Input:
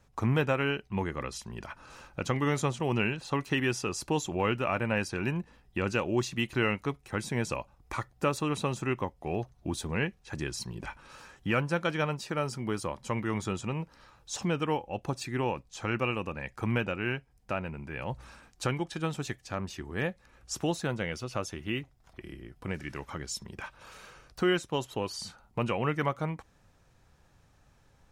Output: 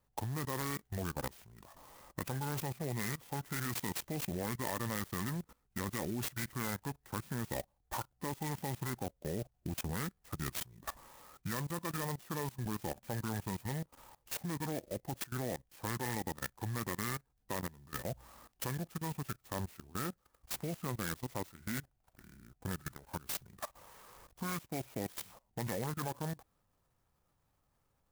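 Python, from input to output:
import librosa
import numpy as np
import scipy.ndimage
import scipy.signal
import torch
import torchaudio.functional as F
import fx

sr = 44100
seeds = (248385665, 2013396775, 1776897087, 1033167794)

y = scipy.signal.sosfilt(scipy.signal.butter(4, 7400.0, 'lowpass', fs=sr, output='sos'), x)
y = fx.peak_eq(y, sr, hz=450.0, db=-2.0, octaves=1.7)
y = fx.formant_shift(y, sr, semitones=-5)
y = fx.low_shelf(y, sr, hz=200.0, db=-5.0)
y = fx.level_steps(y, sr, step_db=20)
y = fx.clock_jitter(y, sr, seeds[0], jitter_ms=0.084)
y = y * librosa.db_to_amplitude(3.0)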